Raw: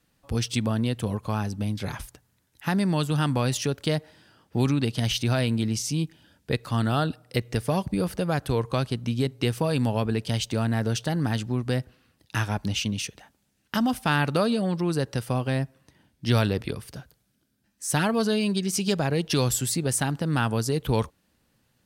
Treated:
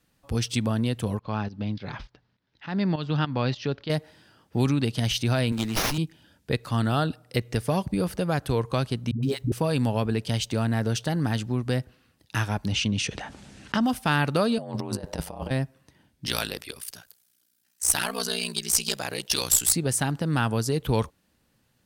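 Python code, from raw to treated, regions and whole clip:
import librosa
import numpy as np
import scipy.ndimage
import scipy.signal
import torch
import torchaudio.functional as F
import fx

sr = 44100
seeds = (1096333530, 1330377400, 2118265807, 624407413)

y = fx.chain(x, sr, fx.steep_lowpass(hz=4900.0, slope=36),
    fx.peak_eq(hz=77.0, db=-8.5, octaves=0.56),
    fx.volume_shaper(bpm=102, per_beat=2, depth_db=-13, release_ms=234.0, shape='fast start'), at=(1.19, 3.9))
y = fx.chain(y, sr, fx.highpass(hz=240.0, slope=6),
    fx.high_shelf(hz=3200.0, db=11.5),
    fx.running_max(window=5), at=(5.52, 5.98))
y = fx.chain(y, sr, fx.block_float(bits=7),
    fx.dispersion(late='highs', ms=117.0, hz=310.0), at=(9.11, 9.52))
y = fx.chain(y, sr, fx.lowpass(hz=9300.0, slope=24),
    fx.high_shelf(hz=5400.0, db=-8.0),
    fx.env_flatten(amount_pct=50), at=(12.72, 13.83))
y = fx.chain(y, sr, fx.band_shelf(hz=720.0, db=8.5, octaves=1.1),
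    fx.over_compress(threshold_db=-28.0, ratio=-0.5),
    fx.ring_mod(carrier_hz=48.0), at=(14.58, 15.51))
y = fx.chain(y, sr, fx.tilt_eq(slope=4.0),
    fx.ring_mod(carrier_hz=30.0),
    fx.tube_stage(drive_db=10.0, bias=0.3), at=(16.26, 19.73))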